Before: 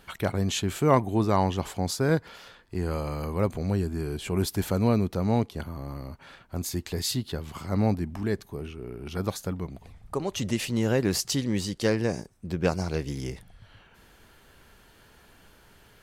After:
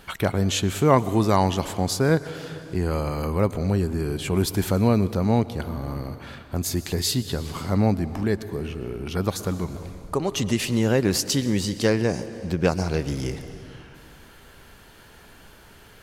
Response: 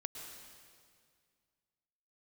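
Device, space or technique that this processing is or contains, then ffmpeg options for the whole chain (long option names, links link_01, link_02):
compressed reverb return: -filter_complex "[0:a]asplit=2[link_01][link_02];[1:a]atrim=start_sample=2205[link_03];[link_02][link_03]afir=irnorm=-1:irlink=0,acompressor=threshold=-33dB:ratio=5,volume=0dB[link_04];[link_01][link_04]amix=inputs=2:normalize=0,asettb=1/sr,asplit=3[link_05][link_06][link_07];[link_05]atrim=end=0.984[link_08];[link_06]atrim=start=0.98:end=1.65,asetpts=PTS-STARTPTS,afade=type=in:duration=0.004:curve=qsin,afade=type=out:start_time=0.666:duration=0.004:curve=qsin,highshelf=frequency=3900:gain=8[link_09];[link_07]atrim=start=1.646[link_10];[link_08][link_09]acrossfade=duration=0.004:curve1=hsin:curve2=qsin[link_11];[link_11][link_10]acrossfade=duration=0.004:curve1=qsin:curve2=hsin,volume=2dB"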